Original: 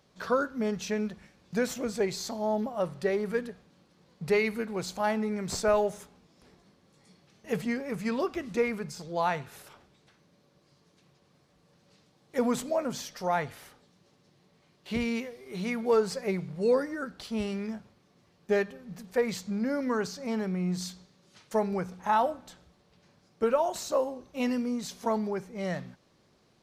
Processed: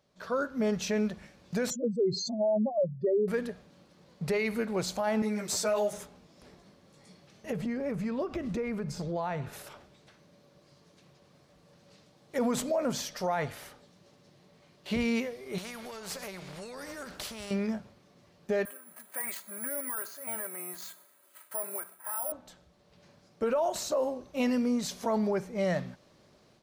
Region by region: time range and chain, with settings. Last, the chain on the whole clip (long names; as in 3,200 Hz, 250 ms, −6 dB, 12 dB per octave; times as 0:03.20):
0:01.70–0:03.28: expanding power law on the bin magnitudes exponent 3.3 + notch filter 280 Hz, Q 7 + dynamic equaliser 360 Hz, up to +5 dB, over −37 dBFS, Q 1
0:05.22–0:05.93: high-pass filter 210 Hz 6 dB per octave + high-shelf EQ 4,400 Hz +9.5 dB + string-ensemble chorus
0:07.50–0:09.53: spectral tilt −2 dB per octave + downward compressor 5 to 1, threshold −34 dBFS
0:15.58–0:17.51: downward compressor 12 to 1, threshold −36 dBFS + every bin compressed towards the loudest bin 2 to 1
0:18.65–0:22.32: resonant band-pass 1,400 Hz, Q 1.4 + comb filter 3.1 ms, depth 74% + bad sample-rate conversion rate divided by 4×, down filtered, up zero stuff
whole clip: parametric band 600 Hz +6.5 dB 0.2 octaves; automatic gain control gain up to 11 dB; brickwall limiter −13.5 dBFS; level −7.5 dB